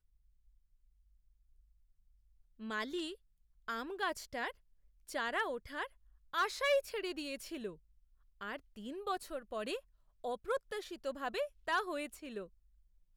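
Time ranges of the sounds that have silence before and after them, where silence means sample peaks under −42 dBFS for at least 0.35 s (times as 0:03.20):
0:02.62–0:03.13
0:03.68–0:04.51
0:05.09–0:05.86
0:06.34–0:07.71
0:08.41–0:09.78
0:10.24–0:12.44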